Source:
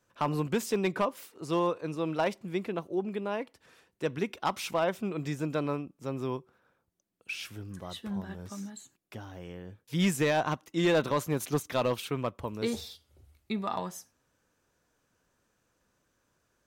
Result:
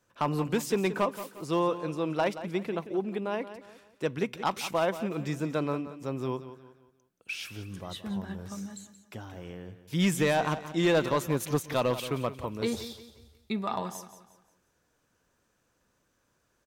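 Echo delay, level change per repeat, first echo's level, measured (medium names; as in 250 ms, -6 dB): 177 ms, -8.5 dB, -13.0 dB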